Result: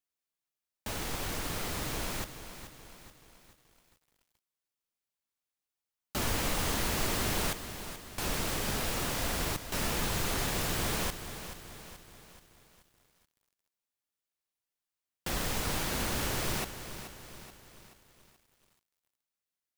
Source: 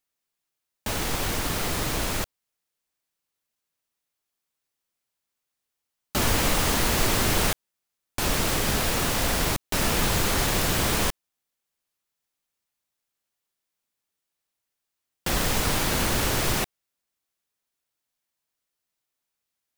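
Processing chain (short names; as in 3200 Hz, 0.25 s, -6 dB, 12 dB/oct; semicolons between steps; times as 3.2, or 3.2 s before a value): lo-fi delay 0.43 s, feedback 55%, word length 8-bit, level -11 dB; gain -8.5 dB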